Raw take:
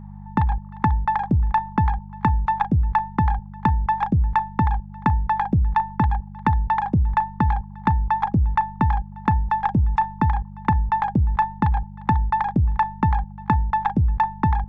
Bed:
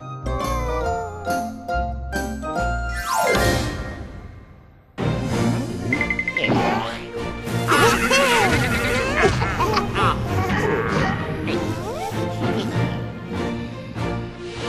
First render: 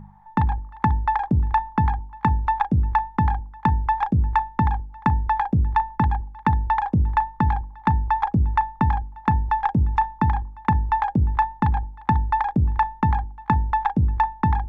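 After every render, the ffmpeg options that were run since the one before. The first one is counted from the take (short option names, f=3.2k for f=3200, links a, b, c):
-af "bandreject=f=50:t=h:w=4,bandreject=f=100:t=h:w=4,bandreject=f=150:t=h:w=4,bandreject=f=200:t=h:w=4,bandreject=f=250:t=h:w=4,bandreject=f=300:t=h:w=4,bandreject=f=350:t=h:w=4,bandreject=f=400:t=h:w=4,bandreject=f=450:t=h:w=4,bandreject=f=500:t=h:w=4,bandreject=f=550:t=h:w=4"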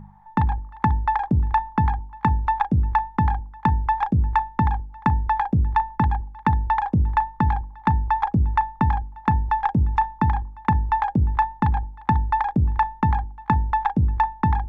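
-af anull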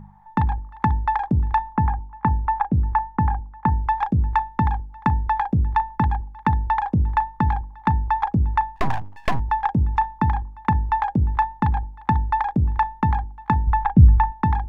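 -filter_complex "[0:a]asettb=1/sr,asplit=3[a][b][c];[a]atrim=end=1.764[d];[b]atrim=start=1.76:end=3.88,asetpts=PTS-STARTPTS,afade=t=in:d=0.004:c=qsin,afade=t=out:st=2.116:d=0.004:c=qsin,lowpass=1.8k[e];[c]atrim=start=3.876[f];[d][e]acrossfade=d=0.004:c1=hsin:c2=qsin[g];[g][f]acrossfade=d=0.004:c1=qsin:c2=hsin,asettb=1/sr,asplit=3[h][i][j];[h]atrim=end=8.764[k];[i]atrim=start=8.76:end=9.4,asetpts=PTS-STARTPTS,afade=t=in:d=0.004:c=qsin,afade=t=out:st=0.636:d=0.004:c=qsin,aeval=exprs='abs(val(0))':c=same[l];[j]atrim=start=9.396[m];[k][l]acrossfade=d=0.004:c1=hsin:c2=qsin[n];[n][m]acrossfade=d=0.004:c1=qsin:c2=hsin,asettb=1/sr,asplit=3[o][p][q];[o]atrim=end=13.674[r];[p]atrim=start=13.67:end=14.32,asetpts=PTS-STARTPTS,afade=t=in:d=0.004:c=qsin,afade=t=out:st=0.646:d=0.004:c=qsin,bass=f=250:g=10,treble=f=4k:g=-15[s];[q]atrim=start=14.316[t];[r][s]acrossfade=d=0.004:c1=hsin:c2=qsin[u];[u][t]acrossfade=d=0.004:c1=qsin:c2=hsin"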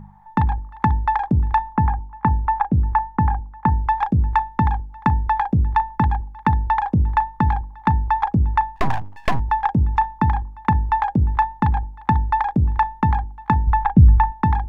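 -af "volume=2dB,alimiter=limit=-3dB:level=0:latency=1"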